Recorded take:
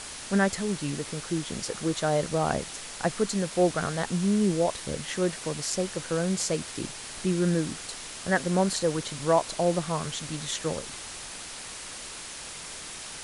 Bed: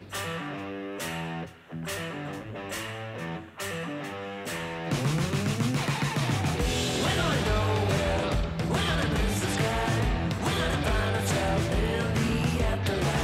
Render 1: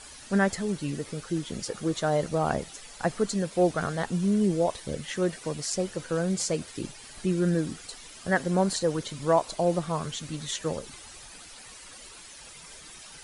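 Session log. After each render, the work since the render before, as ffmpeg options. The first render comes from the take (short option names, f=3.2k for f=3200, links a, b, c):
-af "afftdn=nr=11:nf=-40"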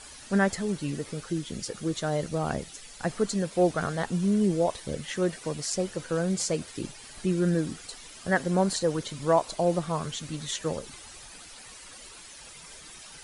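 -filter_complex "[0:a]asettb=1/sr,asplit=3[a][b][c];[a]atrim=end=1.334[d];[b]atrim=start=1.33:end=3.09,asetpts=PTS-STARTPTS,afade=t=in:d=0.004:c=qsin,afade=t=out:st=1.756:d=0.004:c=qsin,equalizer=f=830:t=o:w=1.9:g=-5[e];[c]atrim=start=3.086[f];[d][e]acrossfade=d=0.004:c1=hsin:c2=qsin[g];[g][f]acrossfade=d=0.004:c1=qsin:c2=hsin"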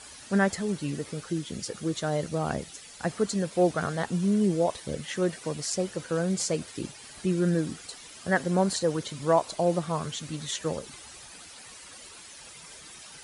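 -af "highpass=58"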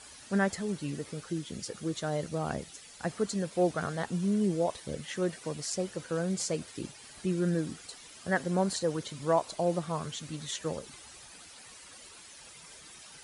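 -af "volume=-4dB"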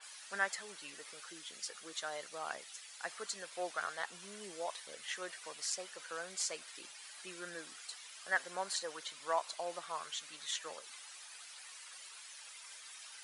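-af "highpass=1.1k,adynamicequalizer=threshold=0.00251:dfrequency=4400:dqfactor=0.7:tfrequency=4400:tqfactor=0.7:attack=5:release=100:ratio=0.375:range=2:mode=cutabove:tftype=highshelf"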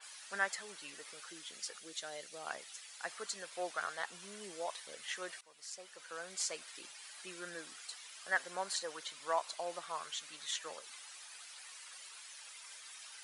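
-filter_complex "[0:a]asettb=1/sr,asplit=3[a][b][c];[a]atrim=end=1.784[d];[b]atrim=start=1.78:end=2.47,asetpts=PTS-STARTPTS,afade=t=in:d=0.004:c=qsin,afade=t=out:st=0.686:d=0.004:c=qsin,equalizer=f=1.1k:t=o:w=1.1:g=-10.5[e];[c]atrim=start=2.466[f];[d][e]acrossfade=d=0.004:c1=hsin:c2=qsin[g];[g][f]acrossfade=d=0.004:c1=qsin:c2=hsin,asplit=2[h][i];[h]atrim=end=5.41,asetpts=PTS-STARTPTS,afade=t=out:st=5.406:d=0.004:c=hsin:silence=0.0944061[j];[i]atrim=start=5.41,asetpts=PTS-STARTPTS,afade=t=in:d=1.03:silence=0.0944061[k];[j][k]concat=n=2:v=0:a=1"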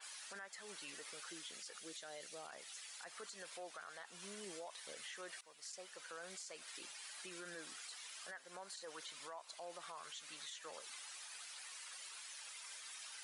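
-af "acompressor=threshold=-43dB:ratio=8,alimiter=level_in=16.5dB:limit=-24dB:level=0:latency=1:release=20,volume=-16.5dB"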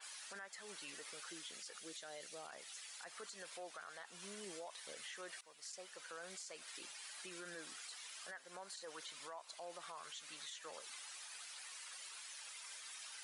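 -af anull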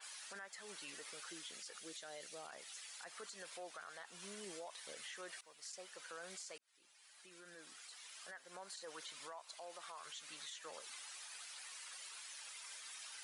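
-filter_complex "[0:a]asettb=1/sr,asplit=3[a][b][c];[a]atrim=end=9.324[d];[b]atrim=start=9.32:end=10.06,asetpts=PTS-STARTPTS,afade=t=in:d=0.004:c=qsin,afade=t=out:st=0.736:d=0.004:c=qsin,highpass=f=440:p=1[e];[c]atrim=start=10.056[f];[d][e]acrossfade=d=0.004:c1=hsin:c2=qsin[g];[g][f]acrossfade=d=0.004:c1=qsin:c2=hsin,asplit=2[h][i];[h]atrim=end=6.58,asetpts=PTS-STARTPTS,afade=t=out:st=6.576:d=0.004:c=hsin[j];[i]atrim=start=6.58,asetpts=PTS-STARTPTS,afade=t=in:d=2.15[k];[j][k]concat=n=2:v=0:a=1"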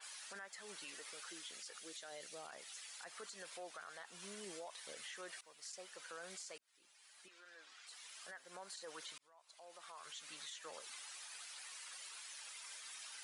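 -filter_complex "[0:a]asettb=1/sr,asplit=3[a][b][c];[a]atrim=end=0.844[d];[b]atrim=start=0.84:end=2.12,asetpts=PTS-STARTPTS,afade=t=in:d=0.004:c=qsin,afade=t=out:st=1.276:d=0.004:c=qsin,highpass=f=270:p=1[e];[c]atrim=start=2.116[f];[d][e]acrossfade=d=0.004:c1=hsin:c2=qsin[g];[g][f]acrossfade=d=0.004:c1=qsin:c2=hsin,asettb=1/sr,asplit=3[h][i][j];[h]atrim=end=7.284[k];[i]atrim=start=7.28:end=7.87,asetpts=PTS-STARTPTS,afade=t=in:d=0.004:c=qsin,afade=t=out:st=0.586:d=0.004:c=qsin,highpass=640,lowpass=5k[l];[j]atrim=start=7.866[m];[k][l]acrossfade=d=0.004:c1=hsin:c2=qsin[n];[n][m]acrossfade=d=0.004:c1=qsin:c2=hsin,asplit=2[o][p];[o]atrim=end=9.18,asetpts=PTS-STARTPTS,afade=t=out:st=9.176:d=0.004:c=hsin[q];[p]atrim=start=9.18,asetpts=PTS-STARTPTS,afade=t=in:d=1.01[r];[q][r]concat=n=2:v=0:a=1"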